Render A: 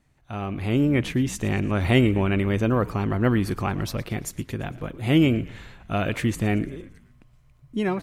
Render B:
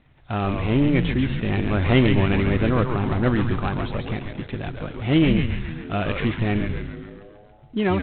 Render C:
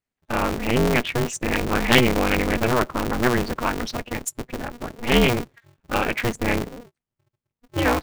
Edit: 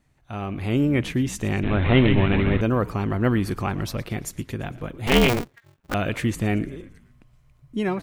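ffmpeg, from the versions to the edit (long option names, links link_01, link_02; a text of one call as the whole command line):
ffmpeg -i take0.wav -i take1.wav -i take2.wav -filter_complex "[0:a]asplit=3[link_01][link_02][link_03];[link_01]atrim=end=1.632[link_04];[1:a]atrim=start=1.628:end=2.612[link_05];[link_02]atrim=start=2.608:end=5.072[link_06];[2:a]atrim=start=5.068:end=5.942[link_07];[link_03]atrim=start=5.938[link_08];[link_04][link_05]acrossfade=duration=0.004:curve1=hsin:curve2=hsin[link_09];[link_09][link_06]acrossfade=duration=0.004:curve1=hsin:curve2=hsin[link_10];[link_10][link_07]acrossfade=duration=0.004:curve1=hsin:curve2=hsin[link_11];[link_11][link_08]acrossfade=duration=0.004:curve1=hsin:curve2=hsin" out.wav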